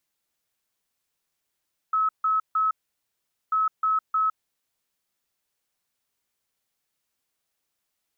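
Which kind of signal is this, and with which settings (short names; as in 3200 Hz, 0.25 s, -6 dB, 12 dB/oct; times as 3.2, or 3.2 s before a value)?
beep pattern sine 1290 Hz, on 0.16 s, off 0.15 s, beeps 3, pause 0.81 s, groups 2, -19.5 dBFS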